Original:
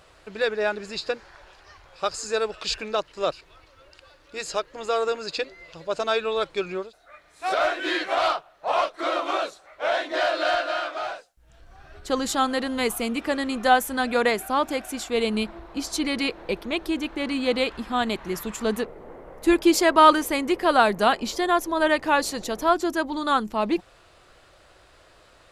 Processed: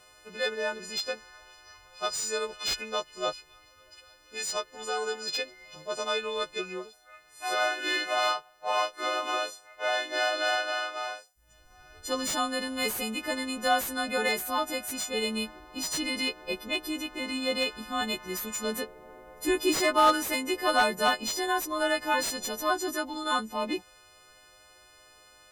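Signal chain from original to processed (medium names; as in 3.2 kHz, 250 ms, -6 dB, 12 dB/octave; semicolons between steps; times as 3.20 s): partials quantised in pitch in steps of 3 st; slew-rate limiter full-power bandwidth 480 Hz; trim -7 dB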